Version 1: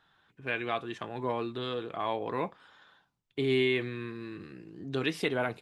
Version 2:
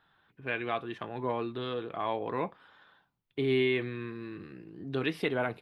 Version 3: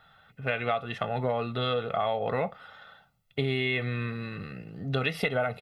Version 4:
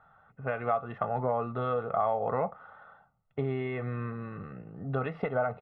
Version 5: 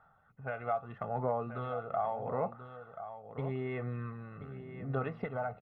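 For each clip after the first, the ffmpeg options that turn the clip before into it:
-af "equalizer=f=7100:t=o:w=0.95:g=-14"
-af "aecho=1:1:1.5:0.83,acompressor=threshold=0.0282:ratio=10,volume=2.37"
-af "lowpass=f=1100:t=q:w=1.9,volume=0.708"
-af "aphaser=in_gain=1:out_gain=1:delay=1.5:decay=0.37:speed=0.8:type=sinusoidal,aecho=1:1:1032:0.282,volume=0.447"

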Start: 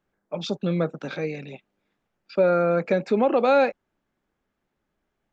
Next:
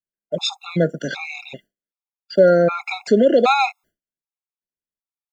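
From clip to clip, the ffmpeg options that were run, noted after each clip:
-af "agate=range=0.0224:threshold=0.00562:ratio=3:detection=peak,crystalizer=i=3:c=0,afftfilt=real='re*gt(sin(2*PI*1.3*pts/sr)*(1-2*mod(floor(b*sr/1024/690),2)),0)':imag='im*gt(sin(2*PI*1.3*pts/sr)*(1-2*mod(floor(b*sr/1024/690),2)),0)':win_size=1024:overlap=0.75,volume=2.24"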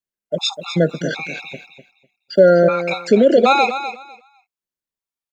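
-af "aecho=1:1:250|500|750:0.299|0.0567|0.0108,volume=1.26"

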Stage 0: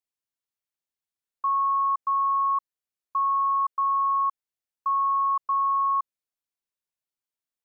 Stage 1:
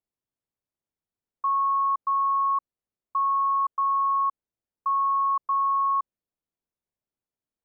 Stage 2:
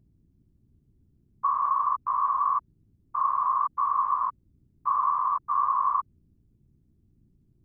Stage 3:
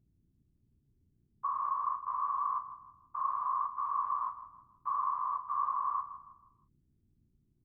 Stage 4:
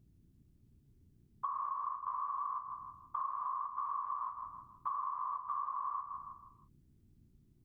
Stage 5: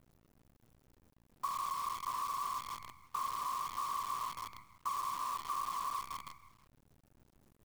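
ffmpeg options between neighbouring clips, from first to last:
-af "tiltshelf=f=1100:g=9.5"
-af "aeval=exprs='val(0)+0.001*(sin(2*PI*60*n/s)+sin(2*PI*2*60*n/s)/2+sin(2*PI*3*60*n/s)/3+sin(2*PI*4*60*n/s)/4+sin(2*PI*5*60*n/s)/5)':c=same,afftfilt=real='hypot(re,im)*cos(2*PI*random(0))':imag='hypot(re,im)*sin(2*PI*random(1))':win_size=512:overlap=0.75,volume=1.68"
-filter_complex "[0:a]asplit=2[s0][s1];[s1]adelay=35,volume=0.335[s2];[s0][s2]amix=inputs=2:normalize=0,asplit=2[s3][s4];[s4]adelay=160,lowpass=f=1800:p=1,volume=0.266,asplit=2[s5][s6];[s6]adelay=160,lowpass=f=1800:p=1,volume=0.43,asplit=2[s7][s8];[s8]adelay=160,lowpass=f=1800:p=1,volume=0.43,asplit=2[s9][s10];[s10]adelay=160,lowpass=f=1800:p=1,volume=0.43[s11];[s3][s5][s7][s9][s11]amix=inputs=5:normalize=0,volume=0.355"
-af "acompressor=threshold=0.00891:ratio=12,volume=2"
-af "acrusher=bits=8:dc=4:mix=0:aa=0.000001"

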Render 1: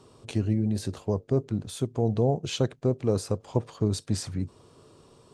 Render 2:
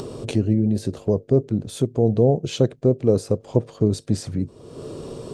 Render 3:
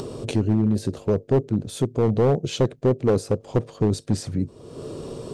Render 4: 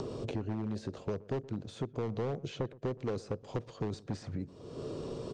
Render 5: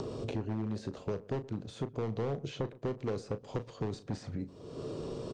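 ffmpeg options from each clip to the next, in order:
-af "lowshelf=f=710:t=q:w=1.5:g=6.5,acompressor=mode=upward:threshold=0.1:ratio=2.5,equalizer=f=86:w=3.1:g=-5"
-af "asoftclip=type=hard:threshold=0.224"
-filter_complex "[0:a]lowpass=f=6900:w=0.5412,lowpass=f=6900:w=1.3066,acrossover=split=550|1100|2300[s0][s1][s2][s3];[s0]acompressor=threshold=0.0282:ratio=4[s4];[s1]acompressor=threshold=0.0112:ratio=4[s5];[s2]acompressor=threshold=0.00562:ratio=4[s6];[s3]acompressor=threshold=0.00316:ratio=4[s7];[s4][s5][s6][s7]amix=inputs=4:normalize=0,asplit=2[s8][s9];[s9]adelay=121,lowpass=f=850:p=1,volume=0.106,asplit=2[s10][s11];[s11]adelay=121,lowpass=f=850:p=1,volume=0.34,asplit=2[s12][s13];[s13]adelay=121,lowpass=f=850:p=1,volume=0.34[s14];[s8][s10][s12][s14]amix=inputs=4:normalize=0,volume=0.562"
-filter_complex "[0:a]asplit=2[s0][s1];[s1]adelay=36,volume=0.251[s2];[s0][s2]amix=inputs=2:normalize=0"

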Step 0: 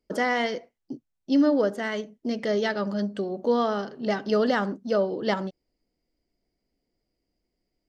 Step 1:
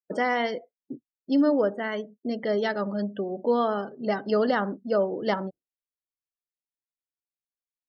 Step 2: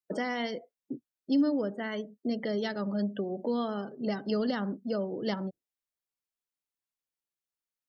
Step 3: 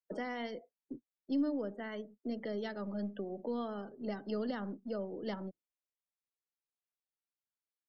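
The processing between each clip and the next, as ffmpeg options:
-filter_complex "[0:a]afftdn=nr=36:nf=-41,acrossover=split=1100[s0][s1];[s0]crystalizer=i=10:c=0[s2];[s2][s1]amix=inputs=2:normalize=0,volume=0.794"
-filter_complex "[0:a]acrossover=split=280|3000[s0][s1][s2];[s1]acompressor=threshold=0.0178:ratio=4[s3];[s0][s3][s2]amix=inputs=3:normalize=0"
-filter_complex "[0:a]lowpass=f=3000:p=1,acrossover=split=160|310|1500[s0][s1][s2][s3];[s0]aeval=exprs='max(val(0),0)':c=same[s4];[s4][s1][s2][s3]amix=inputs=4:normalize=0,volume=0.473"

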